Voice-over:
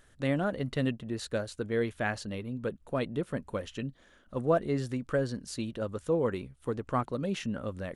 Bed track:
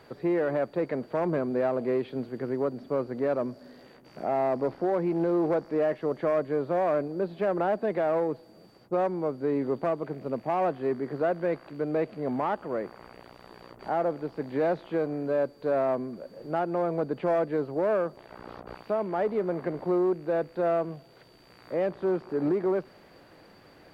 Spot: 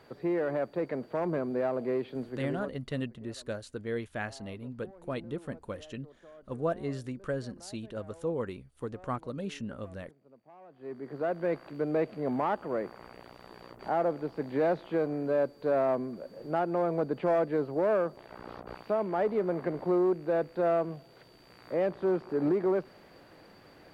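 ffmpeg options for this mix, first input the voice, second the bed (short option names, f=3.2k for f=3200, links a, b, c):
-filter_complex "[0:a]adelay=2150,volume=-4.5dB[a];[1:a]volume=22.5dB,afade=t=out:st=2.41:d=0.38:silence=0.0668344,afade=t=in:st=10.69:d=0.9:silence=0.0501187[b];[a][b]amix=inputs=2:normalize=0"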